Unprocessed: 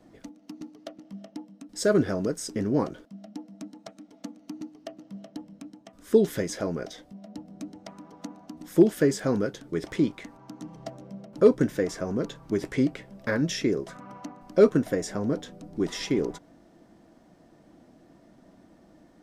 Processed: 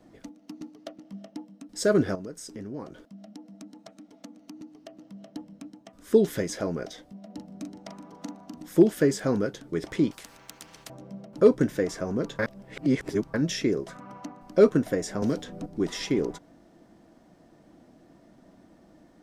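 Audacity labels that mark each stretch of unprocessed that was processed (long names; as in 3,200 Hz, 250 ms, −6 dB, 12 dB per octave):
2.150000	5.280000	downward compressor 2 to 1, threshold −43 dBFS
7.260000	8.640000	double-tracking delay 41 ms −6.5 dB
10.110000	10.900000	every bin compressed towards the loudest bin 4 to 1
12.390000	13.340000	reverse
15.220000	15.660000	multiband upward and downward compressor depth 100%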